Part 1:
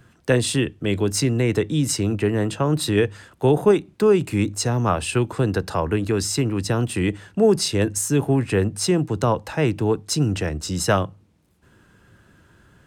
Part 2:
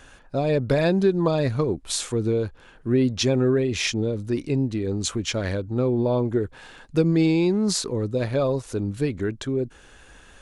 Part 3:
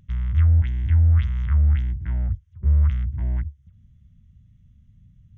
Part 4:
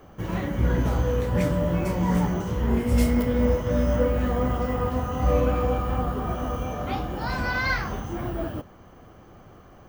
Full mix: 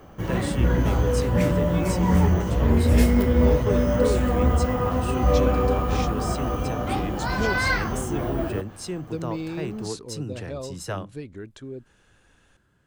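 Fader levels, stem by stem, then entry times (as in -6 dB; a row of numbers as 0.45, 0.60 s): -12.5, -12.0, -6.5, +2.0 dB; 0.00, 2.15, 1.75, 0.00 s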